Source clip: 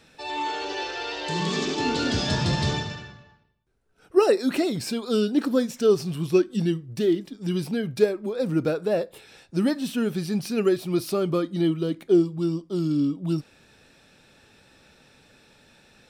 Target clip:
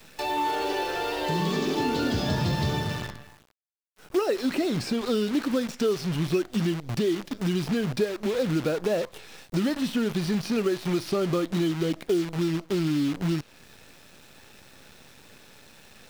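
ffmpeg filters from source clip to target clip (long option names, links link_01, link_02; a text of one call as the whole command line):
ffmpeg -i in.wav -filter_complex "[0:a]asplit=2[link_01][link_02];[link_02]acompressor=threshold=-33dB:ratio=5,volume=3dB[link_03];[link_01][link_03]amix=inputs=2:normalize=0,acrusher=bits=6:dc=4:mix=0:aa=0.000001,acrossover=split=1200|5700[link_04][link_05][link_06];[link_04]acompressor=threshold=-23dB:ratio=4[link_07];[link_05]acompressor=threshold=-36dB:ratio=4[link_08];[link_06]acompressor=threshold=-49dB:ratio=4[link_09];[link_07][link_08][link_09]amix=inputs=3:normalize=0" out.wav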